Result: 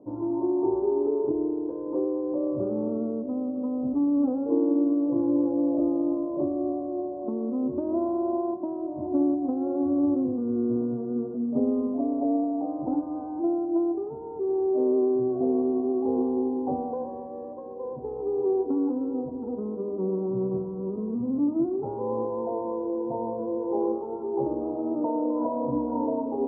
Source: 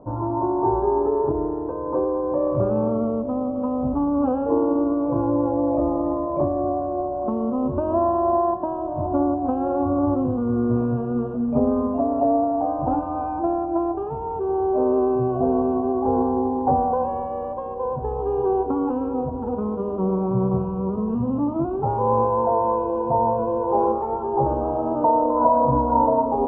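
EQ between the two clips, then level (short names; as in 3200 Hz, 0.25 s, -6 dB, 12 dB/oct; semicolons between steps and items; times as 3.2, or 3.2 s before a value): band-pass 320 Hz, Q 2.3; 0.0 dB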